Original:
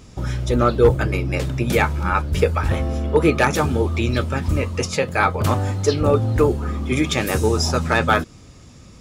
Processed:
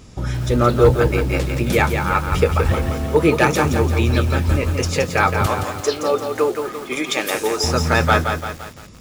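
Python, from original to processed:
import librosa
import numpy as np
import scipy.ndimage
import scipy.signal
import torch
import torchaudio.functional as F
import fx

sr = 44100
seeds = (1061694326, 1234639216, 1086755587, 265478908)

y = fx.highpass(x, sr, hz=410.0, slope=12, at=(5.46, 7.64))
y = fx.echo_crushed(y, sr, ms=171, feedback_pct=55, bits=6, wet_db=-6)
y = y * 10.0 ** (1.0 / 20.0)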